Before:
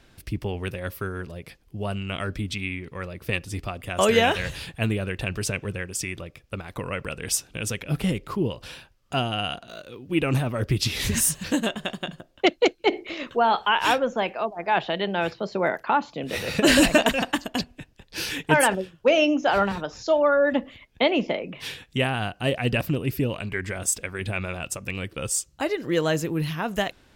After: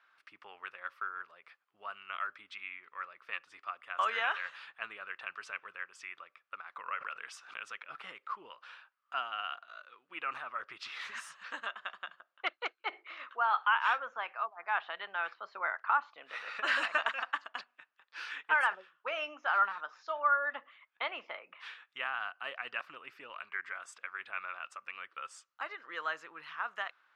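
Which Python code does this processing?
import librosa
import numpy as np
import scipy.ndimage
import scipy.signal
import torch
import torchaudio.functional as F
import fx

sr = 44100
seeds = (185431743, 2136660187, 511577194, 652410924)

y = fx.ladder_bandpass(x, sr, hz=1400.0, resonance_pct=60)
y = fx.pre_swell(y, sr, db_per_s=94.0, at=(6.88, 7.6))
y = y * 10.0 ** (2.5 / 20.0)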